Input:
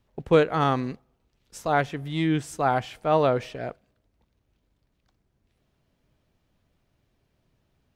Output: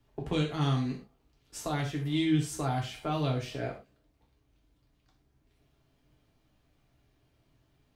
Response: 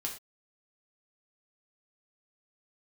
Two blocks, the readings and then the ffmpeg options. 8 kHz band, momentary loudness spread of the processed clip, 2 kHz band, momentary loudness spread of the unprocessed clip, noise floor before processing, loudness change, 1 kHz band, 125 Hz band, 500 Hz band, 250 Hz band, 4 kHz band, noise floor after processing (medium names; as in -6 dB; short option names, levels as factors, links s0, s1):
+1.0 dB, 12 LU, -9.0 dB, 14 LU, -73 dBFS, -7.0 dB, -11.5 dB, -0.5 dB, -12.5 dB, -3.0 dB, -0.5 dB, -71 dBFS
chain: -filter_complex "[0:a]acrossover=split=200|3000[s0][s1][s2];[s1]acompressor=threshold=0.02:ratio=6[s3];[s0][s3][s2]amix=inputs=3:normalize=0[s4];[1:a]atrim=start_sample=2205[s5];[s4][s5]afir=irnorm=-1:irlink=0"